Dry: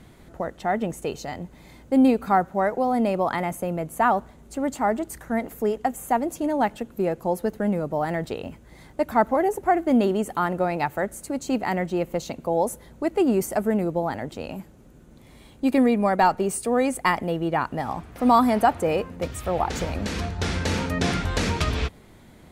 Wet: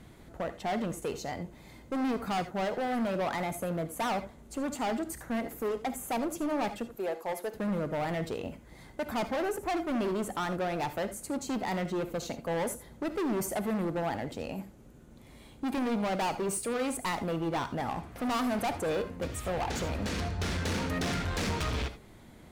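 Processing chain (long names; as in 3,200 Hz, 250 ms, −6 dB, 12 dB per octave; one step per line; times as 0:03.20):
0:06.95–0:07.54: high-pass filter 500 Hz 12 dB per octave
gain into a clipping stage and back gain 25 dB
reverb whose tail is shaped and stops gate 100 ms rising, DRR 11 dB
level −3.5 dB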